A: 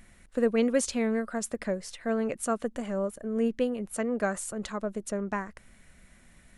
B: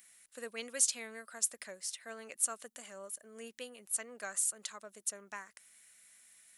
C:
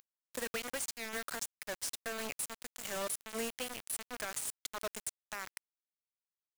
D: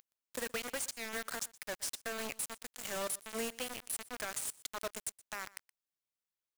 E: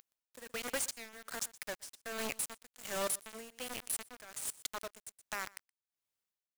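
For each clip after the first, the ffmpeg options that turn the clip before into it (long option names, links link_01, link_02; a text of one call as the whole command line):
ffmpeg -i in.wav -af "aderivative,volume=4dB" out.wav
ffmpeg -i in.wav -af "acompressor=threshold=-42dB:ratio=10,alimiter=level_in=14dB:limit=-24dB:level=0:latency=1:release=114,volume=-14dB,acrusher=bits=7:mix=0:aa=0.000001,volume=10.5dB" out.wav
ffmpeg -i in.wav -af "aecho=1:1:121:0.0841" out.wav
ffmpeg -i in.wav -af "tremolo=f=1.3:d=0.85,volume=3dB" out.wav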